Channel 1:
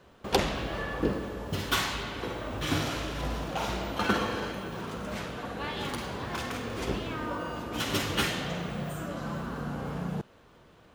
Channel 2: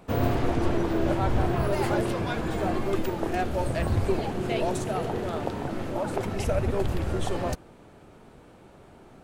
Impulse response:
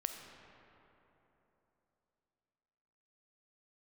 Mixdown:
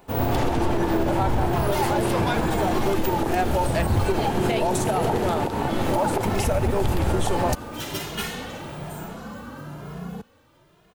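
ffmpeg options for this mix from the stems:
-filter_complex "[0:a]asoftclip=type=tanh:threshold=-20dB,asplit=2[a][b];[b]adelay=2.4,afreqshift=1.1[c];[a][c]amix=inputs=2:normalize=1,volume=1.5dB[d];[1:a]equalizer=f=870:w=6.1:g=8.5,dynaudnorm=f=140:g=3:m=14dB,volume=-3dB[e];[d][e]amix=inputs=2:normalize=0,highshelf=f=10k:g=11,alimiter=limit=-13dB:level=0:latency=1:release=88"

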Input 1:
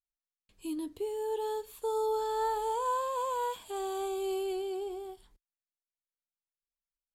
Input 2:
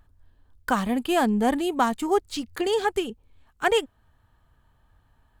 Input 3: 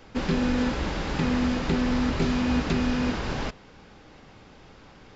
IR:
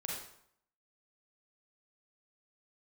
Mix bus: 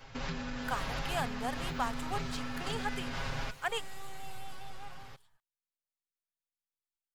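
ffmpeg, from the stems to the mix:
-filter_complex "[0:a]aeval=exprs='abs(val(0))':c=same,volume=-8.5dB[a];[1:a]highpass=400,volume=-9.5dB[b];[2:a]alimiter=limit=-20.5dB:level=0:latency=1,volume=-2.5dB[c];[a][c]amix=inputs=2:normalize=0,aecho=1:1:7.4:0.93,acompressor=threshold=-30dB:ratio=6,volume=0dB[d];[b][d]amix=inputs=2:normalize=0,equalizer=f=320:t=o:w=1.1:g=-13"

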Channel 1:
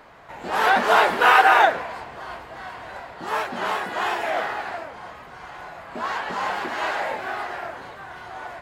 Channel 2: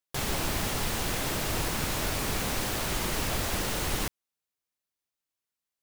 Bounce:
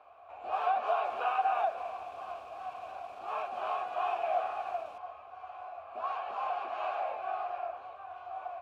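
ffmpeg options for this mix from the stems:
-filter_complex "[0:a]lowshelf=f=120:t=q:w=3:g=11,acompressor=threshold=-20dB:ratio=6,volume=0.5dB[a];[1:a]alimiter=level_in=1.5dB:limit=-24dB:level=0:latency=1,volume=-1.5dB,adelay=900,volume=-4dB[b];[a][b]amix=inputs=2:normalize=0,asplit=3[c][d][e];[c]bandpass=f=730:t=q:w=8,volume=0dB[f];[d]bandpass=f=1.09k:t=q:w=8,volume=-6dB[g];[e]bandpass=f=2.44k:t=q:w=8,volume=-9dB[h];[f][g][h]amix=inputs=3:normalize=0"

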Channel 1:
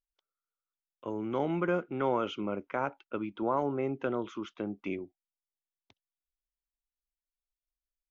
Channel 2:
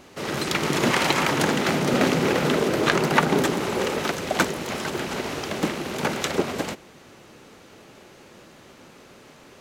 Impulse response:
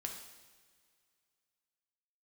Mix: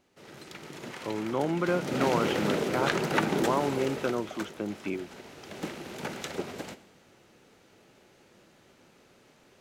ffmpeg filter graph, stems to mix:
-filter_complex "[0:a]volume=2dB[a];[1:a]equalizer=f=1.1k:w=7.9:g=-5,volume=-3dB,afade=t=in:st=1.55:d=0.61:silence=0.223872,afade=t=out:st=3.6:d=0.75:silence=0.298538,afade=t=in:st=5.37:d=0.29:silence=0.446684,asplit=2[b][c];[c]volume=-6dB[d];[2:a]atrim=start_sample=2205[e];[d][e]afir=irnorm=-1:irlink=0[f];[a][b][f]amix=inputs=3:normalize=0"

